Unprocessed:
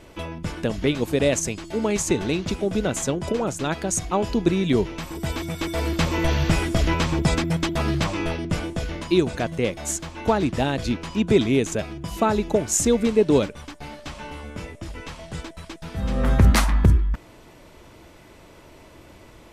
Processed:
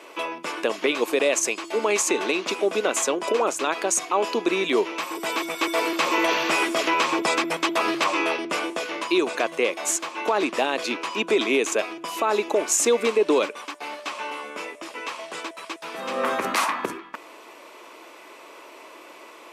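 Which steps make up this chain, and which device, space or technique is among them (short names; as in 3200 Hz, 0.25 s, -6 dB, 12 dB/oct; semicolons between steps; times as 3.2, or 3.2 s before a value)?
laptop speaker (HPF 340 Hz 24 dB/oct; bell 1100 Hz +8 dB 0.4 oct; bell 2500 Hz +6 dB 0.41 oct; limiter -15 dBFS, peak gain reduction 10.5 dB); gain +3.5 dB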